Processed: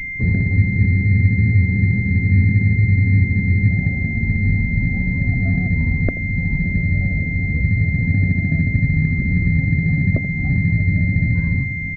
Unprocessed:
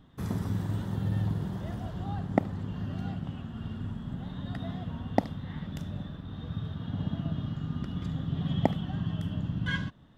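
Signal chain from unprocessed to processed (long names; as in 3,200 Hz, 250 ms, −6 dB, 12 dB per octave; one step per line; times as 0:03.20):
downward compressor 10 to 1, threshold −31 dBFS, peak gain reduction 14.5 dB
spectral tilt −4.5 dB per octave
feedback delay with all-pass diffusion 938 ms, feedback 58%, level −12.5 dB
spectral peaks only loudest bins 32
high-frequency loss of the air 210 metres
hum removal 70.33 Hz, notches 4
tempo change 0.85×
on a send: single-tap delay 83 ms −14 dB
on the sum: frozen spectrum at 0:00.60, 3.10 s
switching amplifier with a slow clock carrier 2,100 Hz
level +5.5 dB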